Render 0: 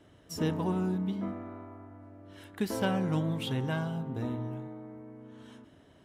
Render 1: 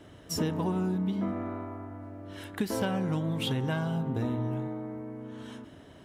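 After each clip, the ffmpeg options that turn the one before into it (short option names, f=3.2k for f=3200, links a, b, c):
-af "acompressor=threshold=-34dB:ratio=6,volume=7.5dB"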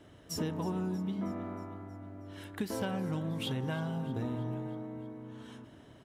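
-af "aecho=1:1:317|634|951|1268|1585|1902:0.141|0.0848|0.0509|0.0305|0.0183|0.011,volume=-5dB"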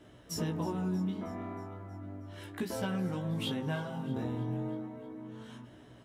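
-af "flanger=delay=16.5:depth=6.6:speed=0.34,volume=3.5dB"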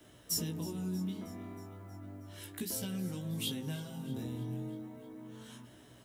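-filter_complex "[0:a]aemphasis=mode=production:type=75kf,acrossover=split=120|440|2400[a][b][c][d];[c]acompressor=threshold=-52dB:ratio=6[e];[a][b][e][d]amix=inputs=4:normalize=0,volume=-3.5dB"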